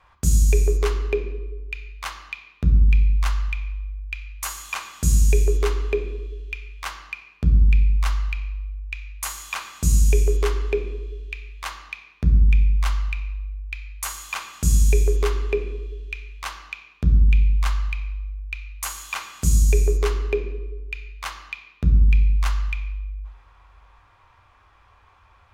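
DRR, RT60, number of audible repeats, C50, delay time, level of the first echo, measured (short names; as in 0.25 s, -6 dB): 4.0 dB, 1.2 s, none, 8.5 dB, none, none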